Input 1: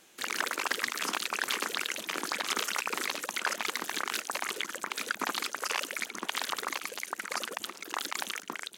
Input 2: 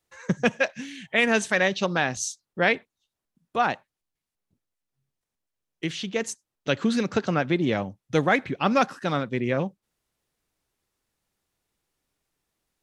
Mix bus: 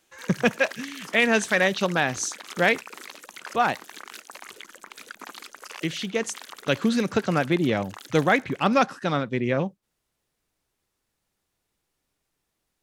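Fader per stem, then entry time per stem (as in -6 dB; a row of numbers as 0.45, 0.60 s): -8.5, +1.0 dB; 0.00, 0.00 s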